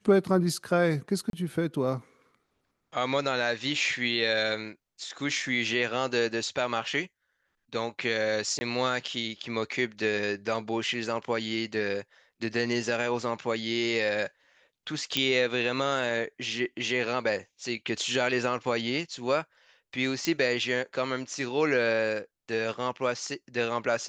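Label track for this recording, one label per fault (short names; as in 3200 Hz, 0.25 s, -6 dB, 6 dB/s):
1.300000	1.330000	gap 32 ms
8.590000	8.610000	gap 20 ms
15.170000	15.170000	pop -10 dBFS
20.250000	20.250000	pop -13 dBFS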